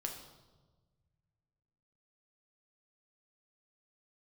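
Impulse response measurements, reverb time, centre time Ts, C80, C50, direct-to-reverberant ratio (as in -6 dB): 1.3 s, 29 ms, 8.5 dB, 6.5 dB, 1.5 dB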